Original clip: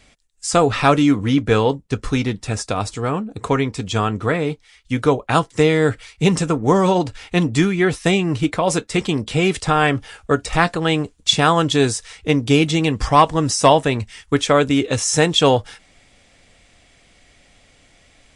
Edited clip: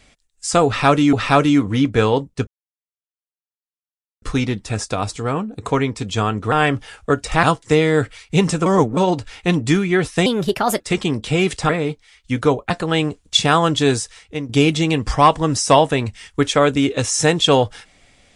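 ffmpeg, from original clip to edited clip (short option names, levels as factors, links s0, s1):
-filter_complex "[0:a]asplit=12[s0][s1][s2][s3][s4][s5][s6][s7][s8][s9][s10][s11];[s0]atrim=end=1.132[s12];[s1]atrim=start=0.658:end=2,asetpts=PTS-STARTPTS,afade=t=out:st=1.338:d=0.004:c=hsin,apad=pad_dur=1.75[s13];[s2]atrim=start=2:end=4.302,asetpts=PTS-STARTPTS,afade=t=in:d=0.004:c=hsin[s14];[s3]atrim=start=9.728:end=10.642[s15];[s4]atrim=start=5.308:end=6.542[s16];[s5]atrim=start=6.538:end=6.852,asetpts=PTS-STARTPTS,areverse[s17];[s6]atrim=start=6.848:end=8.144[s18];[s7]atrim=start=8.14:end=8.84,asetpts=PTS-STARTPTS,asetrate=56889,aresample=44100,atrim=end_sample=23930,asetpts=PTS-STARTPTS[s19];[s8]atrim=start=8.836:end=9.732[s20];[s9]atrim=start=4.298:end=5.312[s21];[s10]atrim=start=10.638:end=12.43,asetpts=PTS-STARTPTS,afade=t=out:st=1.272:d=0.52:c=qua:silence=0.334965[s22];[s11]atrim=start=12.43,asetpts=PTS-STARTPTS,afade=t=in:d=0.004:c=hsin:silence=0.334965[s23];[s13][s14]concat=n=2:v=0:a=1[s24];[s12][s24]acrossfade=d=0.004:c1=hsin:c2=hsin[s25];[s25][s15]acrossfade=d=0.004:c1=hsin:c2=hsin[s26];[s26][s16]acrossfade=d=0.004:c1=hsin:c2=hsin[s27];[s27][s17]acrossfade=d=0.004:c1=hsin:c2=hsin[s28];[s28][s18]acrossfade=d=0.004:c1=hsin:c2=hsin[s29];[s29][s19]acrossfade=d=0.004:c1=hsin:c2=hsin[s30];[s30][s20]acrossfade=d=0.004:c1=hsin:c2=hsin[s31];[s31][s21]acrossfade=d=0.004:c1=hsin:c2=hsin[s32];[s22][s23]concat=n=2:v=0:a=1[s33];[s32][s33]acrossfade=d=0.004:c1=hsin:c2=hsin"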